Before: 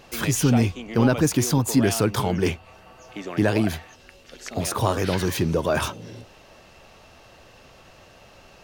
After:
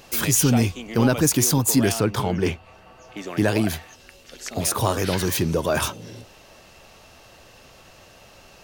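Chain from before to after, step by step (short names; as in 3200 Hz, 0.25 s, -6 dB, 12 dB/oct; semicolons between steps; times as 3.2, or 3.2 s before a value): high shelf 5600 Hz +10.5 dB, from 1.92 s -3.5 dB, from 3.17 s +8.5 dB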